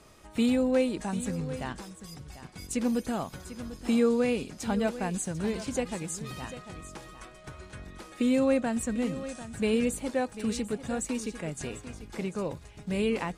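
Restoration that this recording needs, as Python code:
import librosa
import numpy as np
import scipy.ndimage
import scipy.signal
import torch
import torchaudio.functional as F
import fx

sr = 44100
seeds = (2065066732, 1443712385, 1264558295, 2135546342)

y = fx.fix_echo_inverse(x, sr, delay_ms=745, level_db=-13.5)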